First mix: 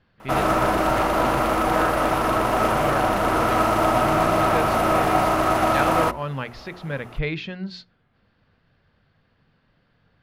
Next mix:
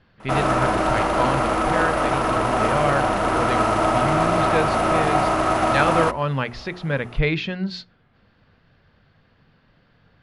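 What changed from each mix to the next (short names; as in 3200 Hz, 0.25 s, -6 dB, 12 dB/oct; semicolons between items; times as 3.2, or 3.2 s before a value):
speech +5.5 dB; master: add brick-wall FIR low-pass 11000 Hz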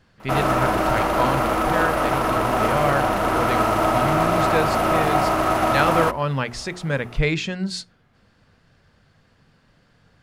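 speech: remove LPF 4300 Hz 24 dB/oct; master: remove brick-wall FIR low-pass 11000 Hz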